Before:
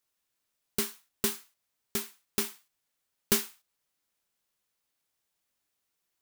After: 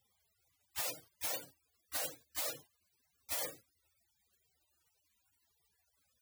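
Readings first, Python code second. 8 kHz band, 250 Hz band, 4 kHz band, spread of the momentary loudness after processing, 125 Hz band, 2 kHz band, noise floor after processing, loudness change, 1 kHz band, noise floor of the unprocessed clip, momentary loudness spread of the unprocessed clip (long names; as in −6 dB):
−7.0 dB, −20.5 dB, −7.0 dB, 9 LU, −15.0 dB, −6.0 dB, −80 dBFS, −7.5 dB, −3.5 dB, −82 dBFS, 8 LU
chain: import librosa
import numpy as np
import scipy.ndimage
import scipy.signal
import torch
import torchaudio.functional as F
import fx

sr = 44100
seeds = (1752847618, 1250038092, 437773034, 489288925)

y = scipy.signal.sosfilt(scipy.signal.butter(4, 130.0, 'highpass', fs=sr, output='sos'), x)
y = fx.spec_gate(y, sr, threshold_db=-25, keep='weak')
y = fx.env_flatten(y, sr, amount_pct=100)
y = y * librosa.db_to_amplitude(4.5)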